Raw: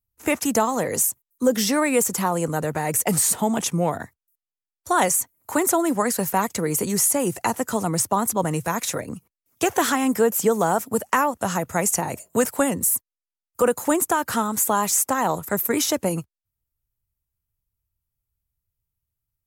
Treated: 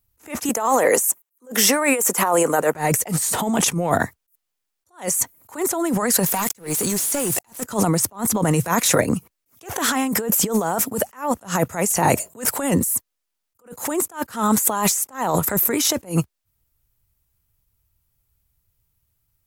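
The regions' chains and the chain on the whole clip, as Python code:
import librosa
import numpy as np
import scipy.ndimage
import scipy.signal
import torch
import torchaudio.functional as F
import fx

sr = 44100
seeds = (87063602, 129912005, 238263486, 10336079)

y = fx.chain(x, sr, fx.highpass(hz=400.0, slope=12),
    fx.peak_eq(hz=4300.0, db=-8.5, octaves=0.84), at=(0.49, 2.75))
y = fx.chain(y, sr, fx.high_shelf(hz=4200.0, db=10.5),
    fx.leveller(passes=5),
    fx.level_steps(step_db=20), at=(6.26, 7.64))
y = fx.low_shelf(y, sr, hz=170.0, db=-2.5)
y = fx.over_compress(y, sr, threshold_db=-28.0, ratio=-1.0)
y = fx.attack_slew(y, sr, db_per_s=220.0)
y = y * 10.0 ** (8.0 / 20.0)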